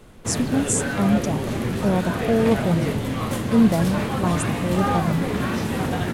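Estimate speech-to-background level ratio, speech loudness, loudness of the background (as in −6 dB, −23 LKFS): 1.5 dB, −23.5 LKFS, −25.0 LKFS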